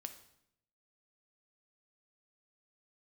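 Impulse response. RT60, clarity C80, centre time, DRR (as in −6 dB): 0.75 s, 14.0 dB, 10 ms, 7.0 dB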